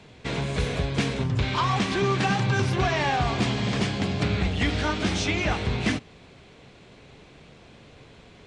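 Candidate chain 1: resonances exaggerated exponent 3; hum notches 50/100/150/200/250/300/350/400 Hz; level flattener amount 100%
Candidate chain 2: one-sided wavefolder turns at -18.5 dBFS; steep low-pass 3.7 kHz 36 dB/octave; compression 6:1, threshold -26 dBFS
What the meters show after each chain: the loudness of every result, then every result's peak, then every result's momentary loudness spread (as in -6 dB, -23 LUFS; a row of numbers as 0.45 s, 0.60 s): -22.5 LUFS, -30.0 LUFS; -11.0 dBFS, -16.5 dBFS; 1 LU, 3 LU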